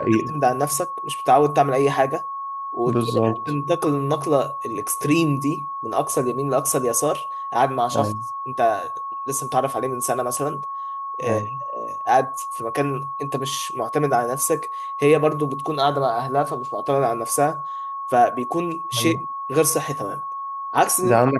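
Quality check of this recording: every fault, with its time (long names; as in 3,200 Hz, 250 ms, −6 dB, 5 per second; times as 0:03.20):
whistle 1,100 Hz −27 dBFS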